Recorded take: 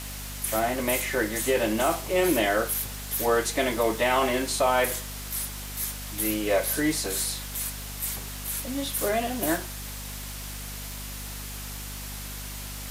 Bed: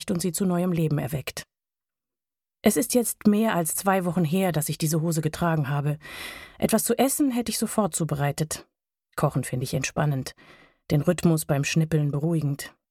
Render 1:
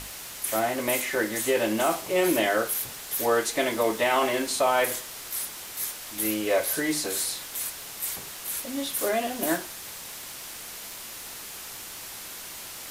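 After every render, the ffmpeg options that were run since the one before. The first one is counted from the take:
ffmpeg -i in.wav -af "bandreject=frequency=50:width_type=h:width=6,bandreject=frequency=100:width_type=h:width=6,bandreject=frequency=150:width_type=h:width=6,bandreject=frequency=200:width_type=h:width=6,bandreject=frequency=250:width_type=h:width=6,bandreject=frequency=300:width_type=h:width=6" out.wav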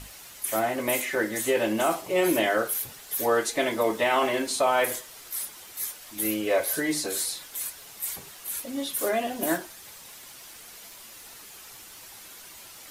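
ffmpeg -i in.wav -af "afftdn=noise_reduction=8:noise_floor=-40" out.wav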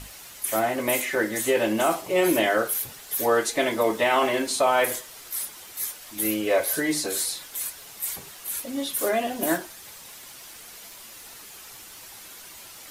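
ffmpeg -i in.wav -af "volume=2dB" out.wav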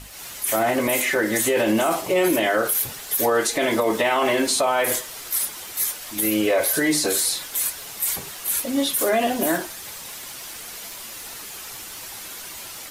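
ffmpeg -i in.wav -af "alimiter=limit=-19dB:level=0:latency=1:release=49,dynaudnorm=framelen=110:gausssize=3:maxgain=7.5dB" out.wav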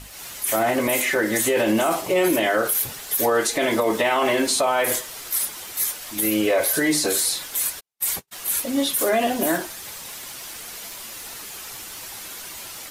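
ffmpeg -i in.wav -filter_complex "[0:a]asplit=3[link_01][link_02][link_03];[link_01]afade=type=out:start_time=7.79:duration=0.02[link_04];[link_02]agate=range=-54dB:threshold=-31dB:ratio=16:release=100:detection=peak,afade=type=in:start_time=7.79:duration=0.02,afade=type=out:start_time=8.31:duration=0.02[link_05];[link_03]afade=type=in:start_time=8.31:duration=0.02[link_06];[link_04][link_05][link_06]amix=inputs=3:normalize=0" out.wav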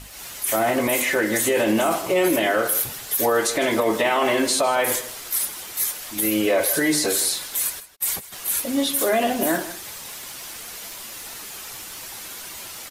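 ffmpeg -i in.wav -filter_complex "[0:a]asplit=2[link_01][link_02];[link_02]adelay=157.4,volume=-14dB,highshelf=frequency=4000:gain=-3.54[link_03];[link_01][link_03]amix=inputs=2:normalize=0" out.wav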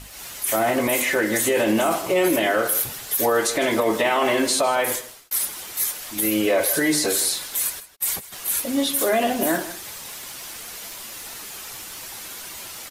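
ffmpeg -i in.wav -filter_complex "[0:a]asplit=2[link_01][link_02];[link_01]atrim=end=5.31,asetpts=PTS-STARTPTS,afade=type=out:start_time=4.63:duration=0.68:curve=qsin[link_03];[link_02]atrim=start=5.31,asetpts=PTS-STARTPTS,afade=type=in:duration=0.004:curve=hsin[link_04];[link_03][link_04]concat=n=2:v=0:a=1" out.wav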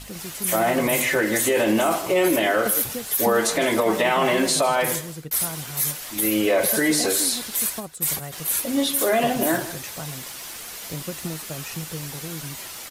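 ffmpeg -i in.wav -i bed.wav -filter_complex "[1:a]volume=-11.5dB[link_01];[0:a][link_01]amix=inputs=2:normalize=0" out.wav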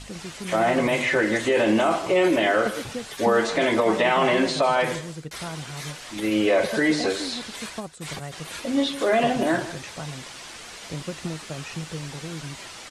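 ffmpeg -i in.wav -filter_complex "[0:a]lowpass=frequency=8900:width=0.5412,lowpass=frequency=8900:width=1.3066,acrossover=split=4600[link_01][link_02];[link_02]acompressor=threshold=-44dB:ratio=4:attack=1:release=60[link_03];[link_01][link_03]amix=inputs=2:normalize=0" out.wav

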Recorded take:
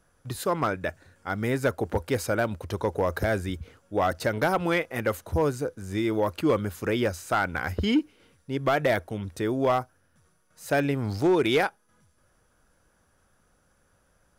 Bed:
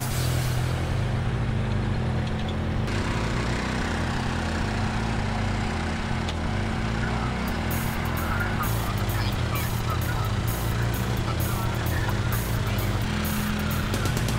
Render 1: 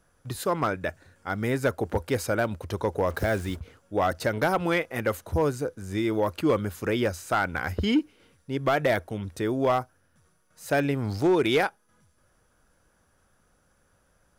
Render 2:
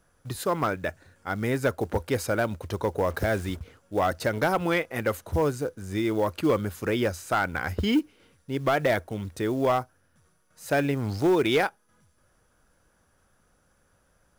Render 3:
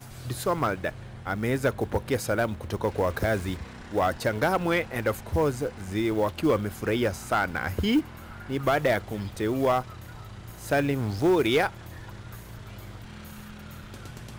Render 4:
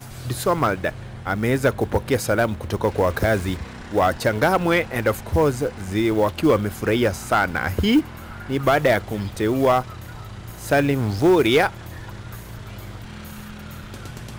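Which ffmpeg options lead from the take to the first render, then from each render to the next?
ffmpeg -i in.wav -filter_complex "[0:a]asplit=3[link_01][link_02][link_03];[link_01]afade=type=out:start_time=3.09:duration=0.02[link_04];[link_02]acrusher=bits=6:mix=0:aa=0.5,afade=type=in:start_time=3.09:duration=0.02,afade=type=out:start_time=3.6:duration=0.02[link_05];[link_03]afade=type=in:start_time=3.6:duration=0.02[link_06];[link_04][link_05][link_06]amix=inputs=3:normalize=0" out.wav
ffmpeg -i in.wav -af "acrusher=bits=7:mode=log:mix=0:aa=0.000001" out.wav
ffmpeg -i in.wav -i bed.wav -filter_complex "[1:a]volume=-16.5dB[link_01];[0:a][link_01]amix=inputs=2:normalize=0" out.wav
ffmpeg -i in.wav -af "volume=6dB" out.wav

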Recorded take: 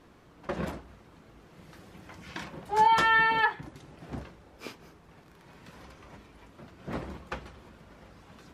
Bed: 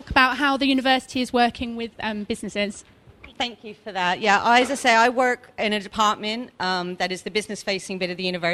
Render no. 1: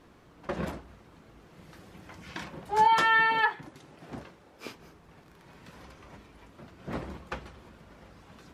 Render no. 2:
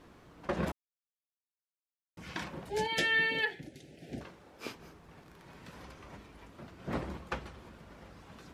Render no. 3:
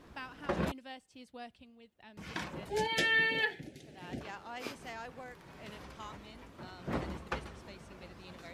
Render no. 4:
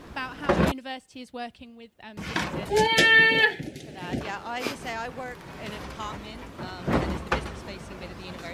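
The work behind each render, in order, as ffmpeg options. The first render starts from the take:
ffmpeg -i in.wav -filter_complex "[0:a]asettb=1/sr,asplit=3[link_01][link_02][link_03];[link_01]atrim=end=2.884[link_04];[link_02]atrim=start=2.88:end=4.66,asetpts=PTS-STARTPTS,afade=type=in:duration=0.004:curve=qsin,afade=type=out:start_time=1.776:duration=0.004:curve=qsin,highpass=frequency=190:poles=1[link_05];[link_03]atrim=start=4.656[link_06];[link_04][link_05]acrossfade=duration=0.004:curve1=hsin:curve2=qsin[link_07];[link_07][link_06]acrossfade=duration=0.004:curve1=qsin:curve2=hsin" out.wav
ffmpeg -i in.wav -filter_complex "[0:a]asettb=1/sr,asplit=3[link_01][link_02][link_03];[link_01]atrim=end=2.694[link_04];[link_02]atrim=start=2.69:end=4.21,asetpts=PTS-STARTPTS,afade=type=in:duration=0.004:curve=qsin,afade=type=out:start_time=1.516:duration=0.004:curve=qsin,asuperstop=centerf=1100:order=4:qfactor=0.85[link_05];[link_03]atrim=start=4.206[link_06];[link_04][link_05]acrossfade=duration=0.004:curve1=hsin:curve2=qsin[link_07];[link_07][link_06]acrossfade=duration=0.004:curve1=qsin:curve2=hsin,asplit=3[link_08][link_09][link_10];[link_08]atrim=end=0.72,asetpts=PTS-STARTPTS,afade=type=out:start_time=0.716:duration=0.004:curve=hsin[link_11];[link_09]atrim=start=0.72:end=2.17,asetpts=PTS-STARTPTS,volume=0[link_12];[link_10]atrim=start=2.17,asetpts=PTS-STARTPTS,afade=type=in:duration=0.004:curve=hsin[link_13];[link_11][link_12][link_13]concat=n=3:v=0:a=1" out.wav
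ffmpeg -i in.wav -i bed.wav -filter_complex "[1:a]volume=-28.5dB[link_01];[0:a][link_01]amix=inputs=2:normalize=0" out.wav
ffmpeg -i in.wav -af "volume=11.5dB" out.wav

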